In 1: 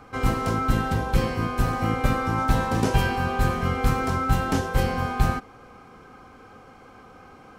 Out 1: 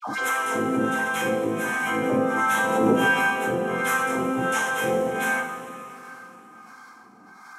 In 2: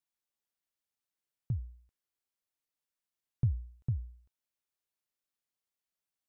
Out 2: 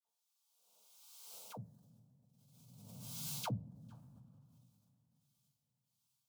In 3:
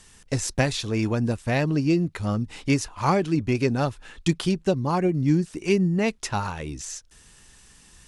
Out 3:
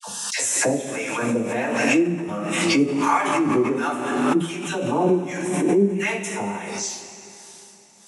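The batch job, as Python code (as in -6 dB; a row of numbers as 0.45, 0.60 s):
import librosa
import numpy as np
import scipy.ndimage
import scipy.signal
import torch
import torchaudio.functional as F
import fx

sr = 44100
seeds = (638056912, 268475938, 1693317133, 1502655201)

p1 = scipy.signal.sosfilt(scipy.signal.butter(4, 200.0, 'highpass', fs=sr, output='sos'), x)
p2 = fx.high_shelf(p1, sr, hz=6700.0, db=-9.5)
p3 = fx.dispersion(p2, sr, late='lows', ms=75.0, hz=900.0)
p4 = p3 + fx.echo_single(p3, sr, ms=244, db=-23.5, dry=0)
p5 = fx.env_phaser(p4, sr, low_hz=310.0, high_hz=4600.0, full_db=-30.0)
p6 = fx.harmonic_tremolo(p5, sr, hz=1.4, depth_pct=100, crossover_hz=750.0)
p7 = fx.high_shelf(p6, sr, hz=2300.0, db=12.0)
p8 = fx.rev_double_slope(p7, sr, seeds[0], early_s=0.31, late_s=3.4, knee_db=-17, drr_db=-9.0)
p9 = fx.pre_swell(p8, sr, db_per_s=31.0)
y = p9 * librosa.db_to_amplitude(-3.0)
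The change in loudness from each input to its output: +1.5, -9.5, +3.0 LU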